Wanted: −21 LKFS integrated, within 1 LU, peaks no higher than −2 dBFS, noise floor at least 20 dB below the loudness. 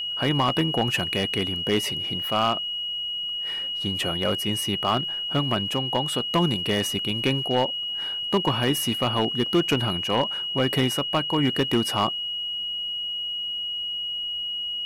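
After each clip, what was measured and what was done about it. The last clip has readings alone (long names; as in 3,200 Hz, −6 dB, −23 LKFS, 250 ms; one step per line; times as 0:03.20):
share of clipped samples 0.6%; peaks flattened at −14.0 dBFS; interfering tone 2,900 Hz; level of the tone −27 dBFS; integrated loudness −24.5 LKFS; sample peak −14.0 dBFS; target loudness −21.0 LKFS
→ clipped peaks rebuilt −14 dBFS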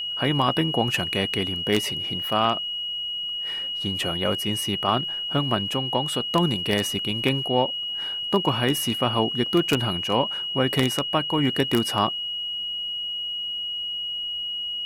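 share of clipped samples 0.0%; interfering tone 2,900 Hz; level of the tone −27 dBFS
→ notch filter 2,900 Hz, Q 30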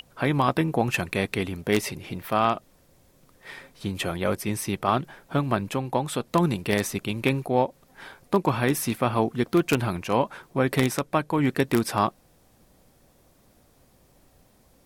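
interfering tone none found; integrated loudness −25.5 LKFS; sample peak −4.5 dBFS; target loudness −21.0 LKFS
→ level +4.5 dB
brickwall limiter −2 dBFS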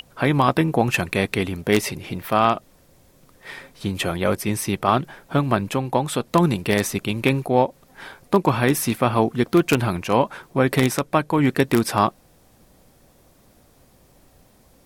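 integrated loudness −21.5 LKFS; sample peak −2.0 dBFS; background noise floor −56 dBFS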